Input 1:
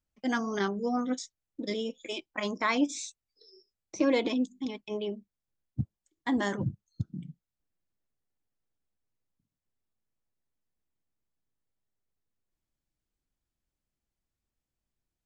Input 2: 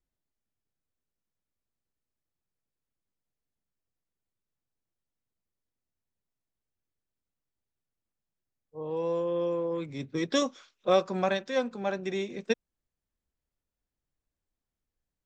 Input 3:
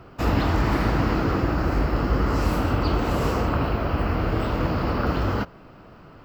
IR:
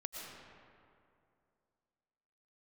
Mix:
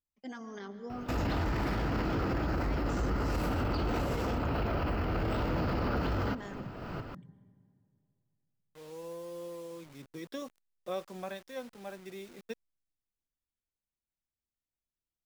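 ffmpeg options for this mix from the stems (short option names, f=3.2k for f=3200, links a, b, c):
-filter_complex "[0:a]alimiter=limit=-22.5dB:level=0:latency=1:release=63,volume=-14dB,asplit=3[a][b][c];[b]volume=-5dB[d];[1:a]deesser=0.9,acrusher=bits=6:mix=0:aa=0.000001,volume=-13dB[e];[2:a]bandreject=f=1.1k:w=12,alimiter=limit=-21dB:level=0:latency=1:release=115,aeval=exprs='0.178*sin(PI/2*1.58*val(0)/0.178)':c=same,adelay=900,volume=1.5dB[f];[c]apad=whole_len=315151[g];[f][g]sidechaincompress=threshold=-48dB:ratio=8:attack=6.7:release=452[h];[3:a]atrim=start_sample=2205[i];[d][i]afir=irnorm=-1:irlink=0[j];[a][e][h][j]amix=inputs=4:normalize=0,alimiter=level_in=1dB:limit=-24dB:level=0:latency=1:release=18,volume=-1dB"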